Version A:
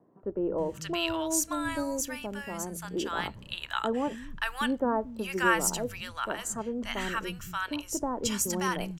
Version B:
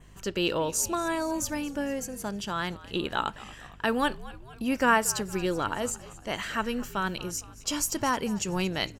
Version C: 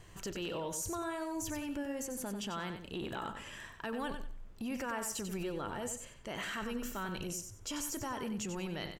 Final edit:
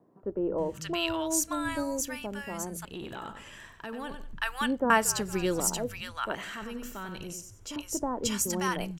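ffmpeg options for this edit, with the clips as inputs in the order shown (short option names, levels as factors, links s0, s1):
-filter_complex "[2:a]asplit=2[s0][s1];[0:a]asplit=4[s2][s3][s4][s5];[s2]atrim=end=2.852[s6];[s0]atrim=start=2.848:end=4.332[s7];[s3]atrim=start=4.328:end=4.902[s8];[1:a]atrim=start=4.898:end=5.602[s9];[s4]atrim=start=5.598:end=6.352[s10];[s1]atrim=start=6.348:end=7.762[s11];[s5]atrim=start=7.758[s12];[s6][s7]acrossfade=d=0.004:c1=hsin:c2=hsin[s13];[s13][s8]acrossfade=d=0.004:c1=hsin:c2=hsin[s14];[s14][s9]acrossfade=d=0.004:c1=hsin:c2=hsin[s15];[s15][s10]acrossfade=d=0.004:c1=hsin:c2=hsin[s16];[s16][s11]acrossfade=d=0.004:c1=hsin:c2=hsin[s17];[s17][s12]acrossfade=d=0.004:c1=hsin:c2=hsin"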